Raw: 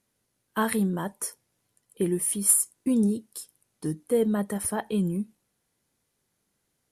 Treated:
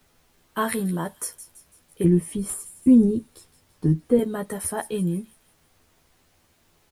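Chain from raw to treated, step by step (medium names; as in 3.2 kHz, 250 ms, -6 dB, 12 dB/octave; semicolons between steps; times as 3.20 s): 2.04–4.19 s: RIAA curve playback; added noise pink -64 dBFS; doubling 12 ms -4 dB; feedback echo behind a high-pass 167 ms, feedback 45%, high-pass 3.4 kHz, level -12 dB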